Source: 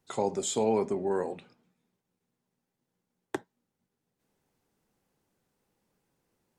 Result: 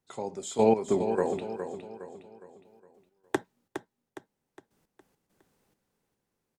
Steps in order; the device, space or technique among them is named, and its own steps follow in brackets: trance gate with a delay (trance gate "....x.x.xxx..." 102 bpm -12 dB; feedback delay 412 ms, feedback 42%, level -9 dB); trim +5.5 dB

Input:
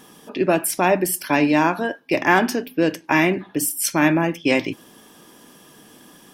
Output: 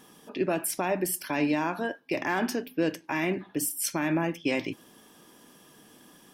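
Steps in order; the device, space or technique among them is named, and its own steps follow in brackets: clipper into limiter (hard clipper -3.5 dBFS, distortion -35 dB; peak limiter -9.5 dBFS, peak gain reduction 6 dB); trim -7 dB

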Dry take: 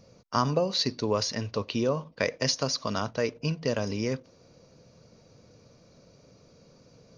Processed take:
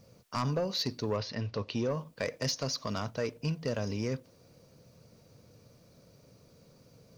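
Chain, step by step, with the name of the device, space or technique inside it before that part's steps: open-reel tape (saturation -19.5 dBFS, distortion -14 dB; peaking EQ 110 Hz +4 dB 1.19 oct; white noise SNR 38 dB); 1.16–1.88 s: low-pass 3.9 kHz -> 7.7 kHz 24 dB/octave; trim -4 dB

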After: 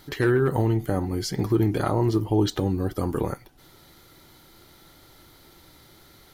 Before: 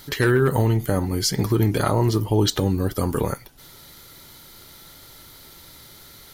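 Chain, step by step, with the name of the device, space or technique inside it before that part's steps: inside a helmet (treble shelf 3.5 kHz -7.5 dB; small resonant body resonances 330/750 Hz, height 6 dB); trim -4 dB

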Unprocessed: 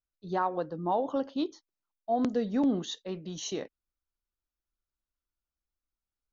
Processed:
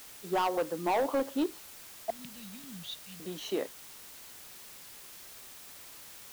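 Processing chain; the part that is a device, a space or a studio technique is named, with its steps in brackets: 2.10–3.20 s: elliptic band-stop 160–2800 Hz; aircraft radio (band-pass 300–2700 Hz; hard clipper -28.5 dBFS, distortion -9 dB; white noise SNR 13 dB); trim +4.5 dB

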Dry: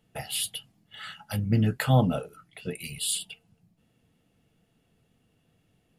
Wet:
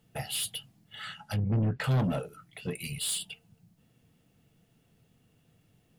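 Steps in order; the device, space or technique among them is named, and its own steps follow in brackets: open-reel tape (saturation -26 dBFS, distortion -6 dB; peaking EQ 130 Hz +4.5 dB 0.94 oct; white noise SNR 46 dB); 1.05–1.84 s: low-pass that closes with the level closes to 1.3 kHz, closed at -23 dBFS

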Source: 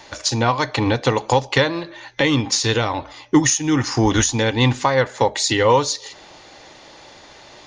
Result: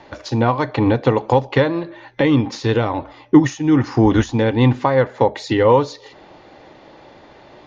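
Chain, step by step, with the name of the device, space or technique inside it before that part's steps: phone in a pocket (low-pass 4 kHz 12 dB/octave; peaking EQ 260 Hz +5.5 dB 3 oct; treble shelf 2.4 kHz -8 dB); trim -1 dB

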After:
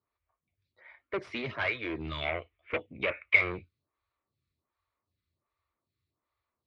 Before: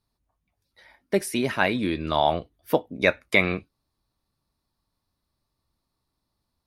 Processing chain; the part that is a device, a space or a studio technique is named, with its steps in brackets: vibe pedal into a guitar amplifier (lamp-driven phase shifter 1.3 Hz; valve stage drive 27 dB, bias 0.45; cabinet simulation 78–3700 Hz, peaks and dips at 87 Hz +7 dB, 180 Hz -9 dB, 260 Hz -7 dB, 820 Hz -6 dB, 1.2 kHz +5 dB, 2.2 kHz +8 dB); 2.21–3.36 s: FFT filter 1.6 kHz 0 dB, 2.5 kHz +11 dB, 4.4 kHz -5 dB

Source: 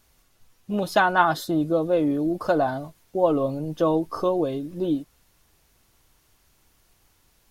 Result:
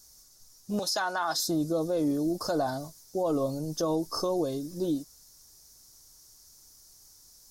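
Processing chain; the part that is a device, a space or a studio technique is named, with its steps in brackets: 0.79–1.40 s: frequency weighting A; over-bright horn tweeter (resonant high shelf 3.9 kHz +12 dB, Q 3; peak limiter -16 dBFS, peak gain reduction 9.5 dB); trim -4 dB

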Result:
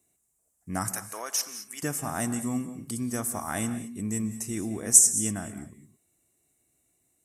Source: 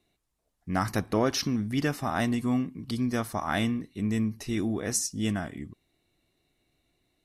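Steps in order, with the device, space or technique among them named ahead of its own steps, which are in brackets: budget condenser microphone (high-pass 60 Hz; resonant high shelf 5.7 kHz +12.5 dB, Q 3); 0.92–1.83 s: high-pass 940 Hz 12 dB/octave; gated-style reverb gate 240 ms rising, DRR 11.5 dB; trim -3.5 dB

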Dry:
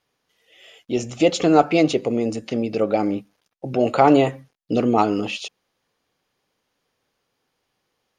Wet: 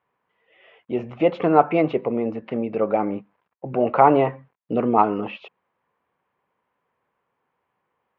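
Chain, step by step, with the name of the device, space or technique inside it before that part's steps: bass cabinet (cabinet simulation 72–2300 Hz, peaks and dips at 110 Hz -4 dB, 290 Hz -5 dB, 1 kHz +9 dB); trim -1 dB

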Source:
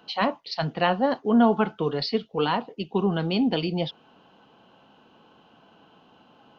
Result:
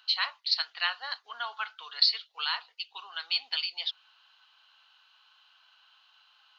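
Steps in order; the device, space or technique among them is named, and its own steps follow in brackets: headphones lying on a table (high-pass 1.3 kHz 24 dB/octave; peaking EQ 4.2 kHz +10.5 dB 0.48 oct); trim -1 dB

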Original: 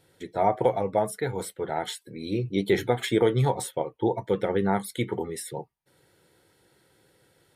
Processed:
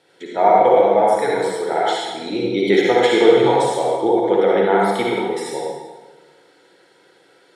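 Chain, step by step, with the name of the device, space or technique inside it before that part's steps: supermarket ceiling speaker (band-pass 320–5800 Hz; reverberation RT60 1.4 s, pre-delay 50 ms, DRR -4 dB); trim +6.5 dB

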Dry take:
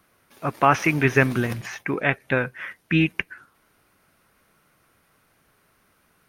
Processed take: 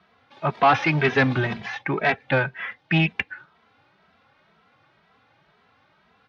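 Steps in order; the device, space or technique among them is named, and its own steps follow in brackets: barber-pole flanger into a guitar amplifier (endless flanger 2.7 ms +2 Hz; saturation -17.5 dBFS, distortion -13 dB; cabinet simulation 84–4300 Hz, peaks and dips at 330 Hz -5 dB, 810 Hz +7 dB, 3.6 kHz +4 dB); trim +5.5 dB

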